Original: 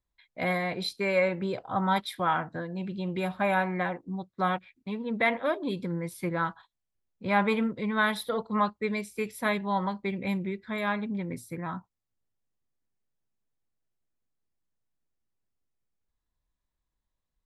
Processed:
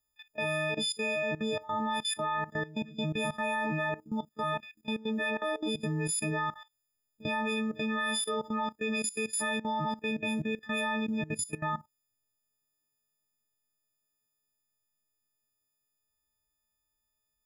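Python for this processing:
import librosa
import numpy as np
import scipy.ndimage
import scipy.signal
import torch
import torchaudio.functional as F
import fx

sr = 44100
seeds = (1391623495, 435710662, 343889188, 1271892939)

y = fx.freq_snap(x, sr, grid_st=6)
y = fx.level_steps(y, sr, step_db=17)
y = y * 10.0 ** (3.0 / 20.0)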